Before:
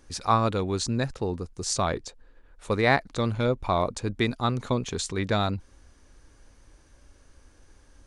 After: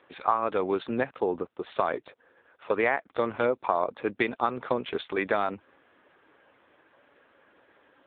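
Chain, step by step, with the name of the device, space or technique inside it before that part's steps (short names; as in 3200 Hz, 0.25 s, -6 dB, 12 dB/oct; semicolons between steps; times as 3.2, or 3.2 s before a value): voicemail (BPF 410–3100 Hz; compressor 8:1, threshold -28 dBFS, peak gain reduction 12.5 dB; gain +8 dB; AMR-NB 6.7 kbps 8000 Hz)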